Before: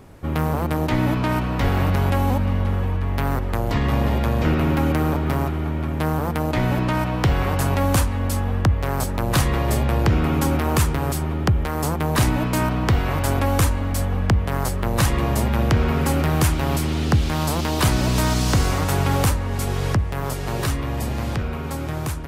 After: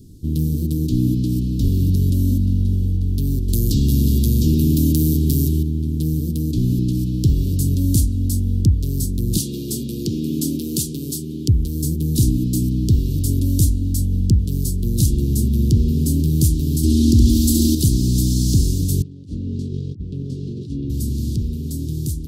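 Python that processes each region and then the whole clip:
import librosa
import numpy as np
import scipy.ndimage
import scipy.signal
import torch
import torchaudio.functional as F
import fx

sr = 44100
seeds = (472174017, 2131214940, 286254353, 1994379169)

y = fx.chain(x, sr, fx.high_shelf(hz=2500.0, db=11.0),
    fx.notch(hz=1100.0, q=14.0),
    fx.env_flatten(amount_pct=50), at=(3.48, 5.63))
y = fx.chain(y, sr, fx.highpass(hz=210.0, slope=12),
    fx.peak_eq(hz=3000.0, db=5.5, octaves=2.4),
    fx.notch(hz=1800.0, q=27.0), at=(9.37, 11.49))
y = fx.chain(y, sr, fx.comb(ms=3.2, depth=0.85),
    fx.room_flutter(wall_m=11.8, rt60_s=0.85),
    fx.env_flatten(amount_pct=50), at=(16.83, 17.75))
y = fx.chain(y, sr, fx.bandpass_edges(low_hz=130.0, high_hz=2100.0),
    fx.over_compress(threshold_db=-28.0, ratio=-0.5), at=(19.02, 20.9))
y = scipy.signal.sosfilt(scipy.signal.cheby2(4, 50, [660.0, 2100.0], 'bandstop', fs=sr, output='sos'), y)
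y = fx.dynamic_eq(y, sr, hz=4200.0, q=0.91, threshold_db=-44.0, ratio=4.0, max_db=-3)
y = y * 10.0 ** (3.5 / 20.0)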